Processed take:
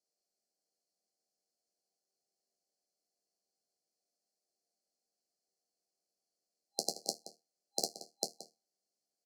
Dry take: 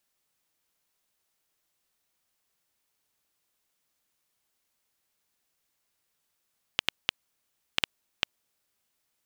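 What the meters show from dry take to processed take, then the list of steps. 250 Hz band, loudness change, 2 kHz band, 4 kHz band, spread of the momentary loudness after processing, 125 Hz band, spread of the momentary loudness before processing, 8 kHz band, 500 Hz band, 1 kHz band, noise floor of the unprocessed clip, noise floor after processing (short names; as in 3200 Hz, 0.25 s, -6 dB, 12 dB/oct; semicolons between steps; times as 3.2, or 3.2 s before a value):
0.0 dB, -6.0 dB, under -40 dB, -8.5 dB, 18 LU, -8.5 dB, 3 LU, +8.5 dB, +4.5 dB, -3.0 dB, -78 dBFS, under -85 dBFS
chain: spectral contrast lowered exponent 0.23; steep high-pass 170 Hz 72 dB/oct; air absorption 68 m; resonator bank D#2 major, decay 0.24 s; FFT band-reject 800–4100 Hz; bell 250 Hz -8 dB 0.64 oct; outdoor echo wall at 30 m, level -8 dB; upward expander 1.5:1, over -59 dBFS; gain +14 dB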